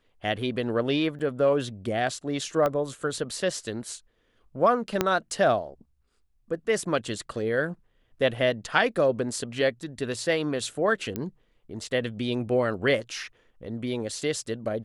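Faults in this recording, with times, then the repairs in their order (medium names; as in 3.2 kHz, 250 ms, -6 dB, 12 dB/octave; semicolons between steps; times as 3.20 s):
1.19–1.20 s: dropout 7 ms
2.66 s: pop -14 dBFS
5.01 s: pop -7 dBFS
11.16 s: pop -16 dBFS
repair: de-click; interpolate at 1.19 s, 7 ms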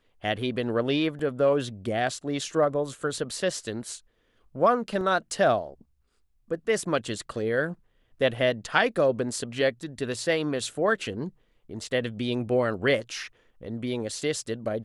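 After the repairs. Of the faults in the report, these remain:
2.66 s: pop
5.01 s: pop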